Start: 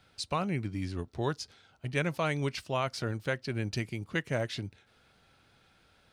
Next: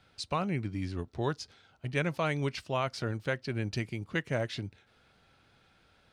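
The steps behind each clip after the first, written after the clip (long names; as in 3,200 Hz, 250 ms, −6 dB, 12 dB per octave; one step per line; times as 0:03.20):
high-shelf EQ 8,300 Hz −8 dB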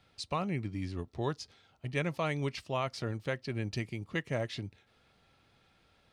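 notch filter 1,500 Hz, Q 9.3
level −2 dB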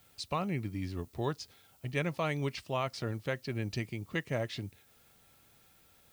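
background noise blue −66 dBFS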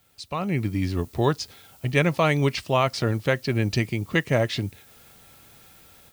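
automatic gain control gain up to 12 dB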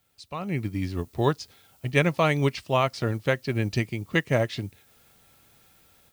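expander for the loud parts 1.5 to 1, over −31 dBFS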